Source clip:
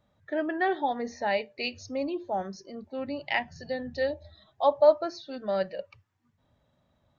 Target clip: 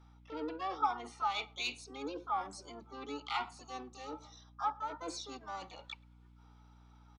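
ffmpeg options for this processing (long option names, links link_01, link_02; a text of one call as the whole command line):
ffmpeg -i in.wav -filter_complex "[0:a]areverse,acompressor=threshold=-38dB:ratio=6,areverse,asoftclip=type=tanh:threshold=-31.5dB,aexciter=amount=3.9:drive=1.1:freq=2900,asplit=3[link_01][link_02][link_03];[link_01]bandpass=frequency=300:width_type=q:width=8,volume=0dB[link_04];[link_02]bandpass=frequency=870:width_type=q:width=8,volume=-6dB[link_05];[link_03]bandpass=frequency=2240:width_type=q:width=8,volume=-9dB[link_06];[link_04][link_05][link_06]amix=inputs=3:normalize=0,lowshelf=frequency=430:width_type=q:width=1.5:gain=-12.5,asplit=2[link_07][link_08];[link_08]adelay=106,lowpass=frequency=1100:poles=1,volume=-22.5dB,asplit=2[link_09][link_10];[link_10]adelay=106,lowpass=frequency=1100:poles=1,volume=0.43,asplit=2[link_11][link_12];[link_12]adelay=106,lowpass=frequency=1100:poles=1,volume=0.43[link_13];[link_09][link_11][link_13]amix=inputs=3:normalize=0[link_14];[link_07][link_14]amix=inputs=2:normalize=0,asplit=2[link_15][link_16];[link_16]asetrate=66075,aresample=44100,atempo=0.66742,volume=-1dB[link_17];[link_15][link_17]amix=inputs=2:normalize=0,aeval=exprs='val(0)+0.000178*(sin(2*PI*60*n/s)+sin(2*PI*2*60*n/s)/2+sin(2*PI*3*60*n/s)/3+sin(2*PI*4*60*n/s)/4+sin(2*PI*5*60*n/s)/5)':channel_layout=same,volume=16.5dB" out.wav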